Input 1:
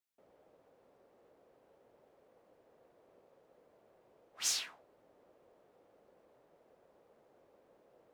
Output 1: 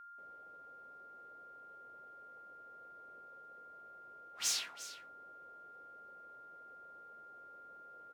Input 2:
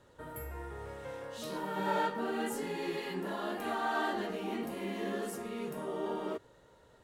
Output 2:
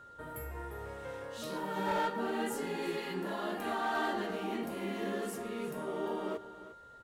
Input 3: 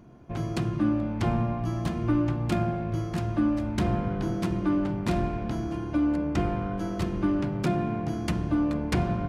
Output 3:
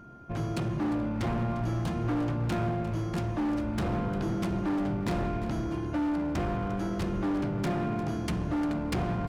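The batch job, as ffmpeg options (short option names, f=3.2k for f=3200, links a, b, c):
-af "asoftclip=type=hard:threshold=-26.5dB,aeval=exprs='val(0)+0.00282*sin(2*PI*1400*n/s)':c=same,aecho=1:1:351:0.188"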